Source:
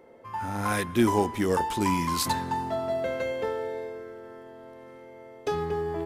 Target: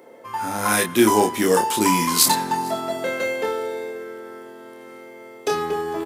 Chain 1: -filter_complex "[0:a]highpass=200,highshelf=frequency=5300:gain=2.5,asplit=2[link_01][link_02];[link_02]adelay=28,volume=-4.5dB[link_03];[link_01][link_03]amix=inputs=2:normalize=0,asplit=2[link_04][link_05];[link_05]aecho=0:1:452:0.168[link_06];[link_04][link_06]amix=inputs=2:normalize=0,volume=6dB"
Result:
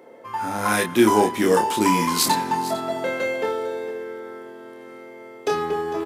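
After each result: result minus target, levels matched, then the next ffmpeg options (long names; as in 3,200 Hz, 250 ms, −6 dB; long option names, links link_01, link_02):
echo-to-direct +9.5 dB; 8,000 Hz band −4.5 dB
-filter_complex "[0:a]highpass=200,highshelf=frequency=5300:gain=2.5,asplit=2[link_01][link_02];[link_02]adelay=28,volume=-4.5dB[link_03];[link_01][link_03]amix=inputs=2:normalize=0,asplit=2[link_04][link_05];[link_05]aecho=0:1:452:0.0562[link_06];[link_04][link_06]amix=inputs=2:normalize=0,volume=6dB"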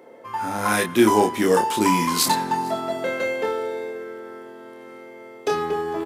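8,000 Hz band −4.5 dB
-filter_complex "[0:a]highpass=200,highshelf=frequency=5300:gain=10.5,asplit=2[link_01][link_02];[link_02]adelay=28,volume=-4.5dB[link_03];[link_01][link_03]amix=inputs=2:normalize=0,asplit=2[link_04][link_05];[link_05]aecho=0:1:452:0.0562[link_06];[link_04][link_06]amix=inputs=2:normalize=0,volume=6dB"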